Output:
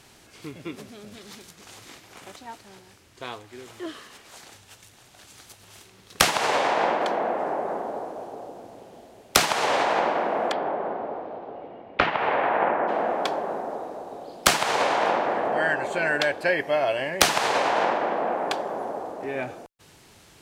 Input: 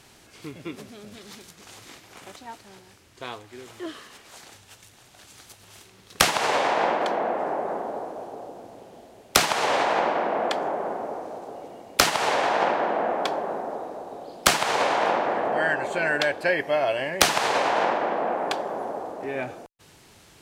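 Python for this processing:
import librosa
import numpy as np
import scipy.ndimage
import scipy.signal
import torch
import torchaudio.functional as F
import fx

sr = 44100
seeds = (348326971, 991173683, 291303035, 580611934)

y = fx.lowpass(x, sr, hz=fx.line((10.51, 4100.0), (12.87, 2200.0)), slope=24, at=(10.51, 12.87), fade=0.02)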